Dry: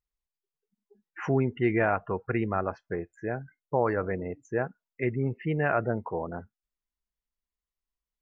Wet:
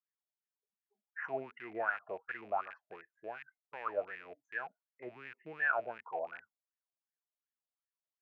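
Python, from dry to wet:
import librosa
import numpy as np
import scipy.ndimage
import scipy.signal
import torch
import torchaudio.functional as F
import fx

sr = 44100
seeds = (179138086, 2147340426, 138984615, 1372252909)

y = fx.rattle_buzz(x, sr, strikes_db=-39.0, level_db=-26.0)
y = fx.wah_lfo(y, sr, hz=2.7, low_hz=610.0, high_hz=1800.0, q=11.0)
y = y * librosa.db_to_amplitude(5.0)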